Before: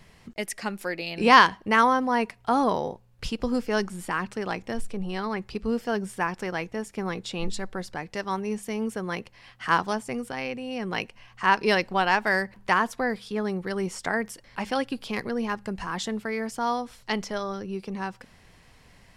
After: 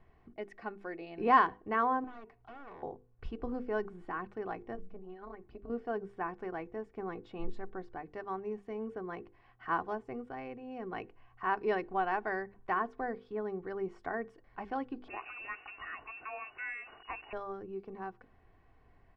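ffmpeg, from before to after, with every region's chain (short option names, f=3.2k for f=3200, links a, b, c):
-filter_complex "[0:a]asettb=1/sr,asplit=3[a][b][c];[a]atrim=end=2.044[d];[b]atrim=start=2.04:end=2.83,asetpts=PTS-STARTPTS,afade=t=in:d=0.004:c=qsin,afade=t=out:st=0.786:d=0.004:c=qsin,acompressor=threshold=-35dB:ratio=2.5:attack=3.2:release=140:knee=1:detection=peak,aeval=exprs='0.02*(abs(mod(val(0)/0.02+3,4)-2)-1)':c=same[e];[c]atrim=start=2.826[f];[d][e]acrossfade=d=0.004:c1=hsin:c2=qsin[g];[g][f]acrossfade=d=0.004:c1=qsin:c2=hsin,asettb=1/sr,asplit=3[h][i][j];[h]atrim=end=4.754[k];[i]atrim=start=4.75:end=5.7,asetpts=PTS-STARTPTS,afade=t=in:d=0.004:c=qsin,afade=t=out:st=0.946:d=0.004:c=qsin,lowpass=9.8k,acompressor=threshold=-29dB:ratio=6:attack=3.2:release=140:knee=1:detection=peak,tremolo=f=190:d=0.857[l];[j]atrim=start=5.696[m];[k][l]acrossfade=d=0.004:c1=hsin:c2=qsin[n];[n][m]acrossfade=d=0.004:c1=qsin:c2=hsin,asettb=1/sr,asplit=3[o][p][q];[o]atrim=end=15.084[r];[p]atrim=start=15.08:end=17.33,asetpts=PTS-STARTPTS,afade=t=in:d=0.004:c=qsin,afade=t=out:st=2.246:d=0.004:c=qsin,aeval=exprs='val(0)+0.5*0.0237*sgn(val(0))':c=same,lowpass=f=2.5k:t=q:w=0.5098,lowpass=f=2.5k:t=q:w=0.6013,lowpass=f=2.5k:t=q:w=0.9,lowpass=f=2.5k:t=q:w=2.563,afreqshift=-2900[s];[q]atrim=start=17.326[t];[r][s]acrossfade=d=0.004:c1=hsin:c2=qsin[u];[u][t]acrossfade=d=0.004:c1=qsin:c2=hsin,lowpass=1.3k,bandreject=f=50:t=h:w=6,bandreject=f=100:t=h:w=6,bandreject=f=150:t=h:w=6,bandreject=f=200:t=h:w=6,bandreject=f=250:t=h:w=6,bandreject=f=300:t=h:w=6,bandreject=f=350:t=h:w=6,bandreject=f=400:t=h:w=6,bandreject=f=450:t=h:w=6,bandreject=f=500:t=h:w=6,aecho=1:1:2.7:0.51,volume=-8.5dB"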